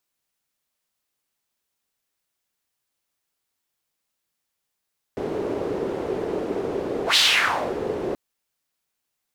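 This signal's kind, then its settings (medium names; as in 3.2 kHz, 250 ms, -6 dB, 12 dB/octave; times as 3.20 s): whoosh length 2.98 s, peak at 1.99 s, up 0.11 s, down 0.65 s, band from 410 Hz, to 3.8 kHz, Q 3, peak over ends 10.5 dB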